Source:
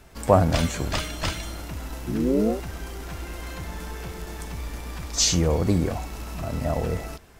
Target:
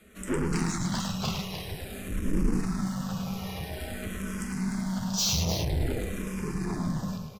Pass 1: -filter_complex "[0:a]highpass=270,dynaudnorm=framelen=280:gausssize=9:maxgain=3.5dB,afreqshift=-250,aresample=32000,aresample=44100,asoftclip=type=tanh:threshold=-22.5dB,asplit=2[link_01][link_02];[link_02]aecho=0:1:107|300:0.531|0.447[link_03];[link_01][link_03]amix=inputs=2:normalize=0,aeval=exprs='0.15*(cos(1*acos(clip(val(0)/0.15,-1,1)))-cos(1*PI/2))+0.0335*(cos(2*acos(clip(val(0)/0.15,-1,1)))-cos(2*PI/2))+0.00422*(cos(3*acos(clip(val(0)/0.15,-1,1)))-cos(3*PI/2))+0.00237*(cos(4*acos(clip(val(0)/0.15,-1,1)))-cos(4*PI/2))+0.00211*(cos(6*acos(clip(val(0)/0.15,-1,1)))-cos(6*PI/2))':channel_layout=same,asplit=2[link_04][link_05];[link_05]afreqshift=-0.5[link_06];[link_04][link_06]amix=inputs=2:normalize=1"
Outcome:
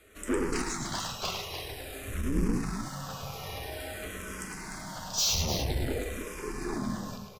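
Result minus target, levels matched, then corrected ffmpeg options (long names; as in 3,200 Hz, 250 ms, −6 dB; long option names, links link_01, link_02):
250 Hz band −3.0 dB
-filter_complex "[0:a]dynaudnorm=framelen=280:gausssize=9:maxgain=3.5dB,afreqshift=-250,aresample=32000,aresample=44100,asoftclip=type=tanh:threshold=-22.5dB,asplit=2[link_01][link_02];[link_02]aecho=0:1:107|300:0.531|0.447[link_03];[link_01][link_03]amix=inputs=2:normalize=0,aeval=exprs='0.15*(cos(1*acos(clip(val(0)/0.15,-1,1)))-cos(1*PI/2))+0.0335*(cos(2*acos(clip(val(0)/0.15,-1,1)))-cos(2*PI/2))+0.00422*(cos(3*acos(clip(val(0)/0.15,-1,1)))-cos(3*PI/2))+0.00237*(cos(4*acos(clip(val(0)/0.15,-1,1)))-cos(4*PI/2))+0.00211*(cos(6*acos(clip(val(0)/0.15,-1,1)))-cos(6*PI/2))':channel_layout=same,asplit=2[link_04][link_05];[link_05]afreqshift=-0.5[link_06];[link_04][link_06]amix=inputs=2:normalize=1"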